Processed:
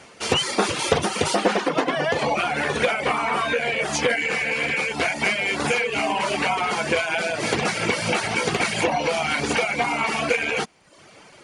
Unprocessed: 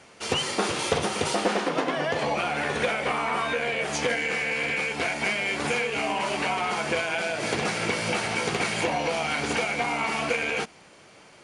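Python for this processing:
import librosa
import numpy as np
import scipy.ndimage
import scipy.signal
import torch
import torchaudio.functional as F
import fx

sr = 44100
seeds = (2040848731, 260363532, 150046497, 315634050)

y = fx.dereverb_blind(x, sr, rt60_s=0.71)
y = y * librosa.db_to_amplitude(5.5)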